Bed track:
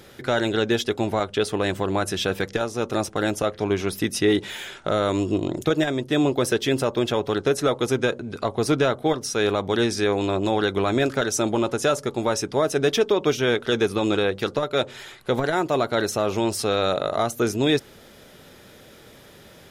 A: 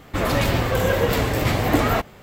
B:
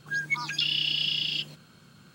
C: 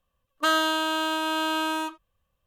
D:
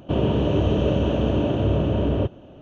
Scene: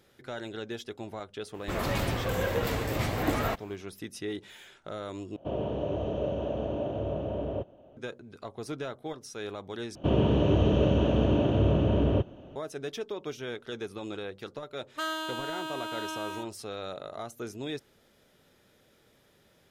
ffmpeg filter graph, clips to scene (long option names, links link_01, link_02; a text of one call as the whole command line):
ffmpeg -i bed.wav -i cue0.wav -i cue1.wav -i cue2.wav -i cue3.wav -filter_complex "[4:a]asplit=2[link_01][link_02];[0:a]volume=-16dB[link_03];[link_01]equalizer=frequency=630:width=1.3:gain=10.5[link_04];[link_03]asplit=3[link_05][link_06][link_07];[link_05]atrim=end=5.364[link_08];[link_04]atrim=end=2.61,asetpts=PTS-STARTPTS,volume=-15dB[link_09];[link_06]atrim=start=7.966:end=9.954[link_10];[link_02]atrim=end=2.61,asetpts=PTS-STARTPTS,volume=-3dB[link_11];[link_07]atrim=start=12.556[link_12];[1:a]atrim=end=2.22,asetpts=PTS-STARTPTS,volume=-9.5dB,afade=type=in:duration=0.004:curve=hsin,afade=type=out:start_time=2.216:duration=0.004:curve=hsin,adelay=1540[link_13];[3:a]atrim=end=2.46,asetpts=PTS-STARTPTS,volume=-10.5dB,afade=type=in:duration=0.004:curve=hsin,afade=type=out:start_time=2.456:duration=0.004:curve=hsin,adelay=14550[link_14];[link_08][link_09]acrossfade=duration=0.004:curve1=hsin:curve2=hsin[link_15];[link_15][link_10]acrossfade=duration=0.004:curve1=hsin:curve2=hsin[link_16];[link_16][link_11]acrossfade=duration=0.004:curve1=hsin:curve2=hsin[link_17];[link_17][link_12]acrossfade=duration=0.004:curve1=hsin:curve2=hsin[link_18];[link_18][link_13][link_14]amix=inputs=3:normalize=0" out.wav